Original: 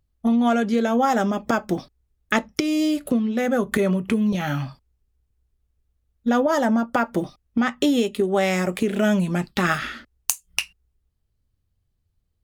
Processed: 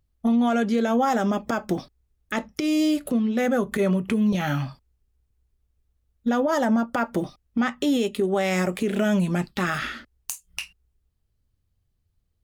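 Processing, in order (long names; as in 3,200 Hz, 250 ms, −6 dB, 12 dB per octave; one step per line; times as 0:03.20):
brickwall limiter −14.5 dBFS, peak gain reduction 11 dB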